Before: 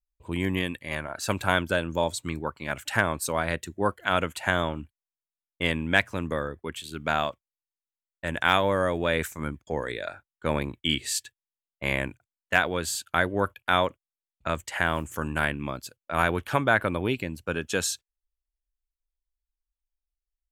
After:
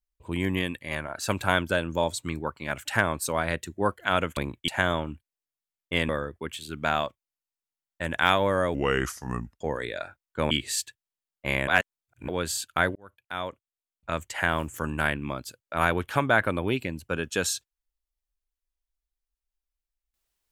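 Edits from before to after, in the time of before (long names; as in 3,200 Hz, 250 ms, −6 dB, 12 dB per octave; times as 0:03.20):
0:05.78–0:06.32: remove
0:08.97–0:09.67: play speed 81%
0:10.57–0:10.88: move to 0:04.37
0:12.05–0:12.66: reverse
0:13.33–0:14.75: fade in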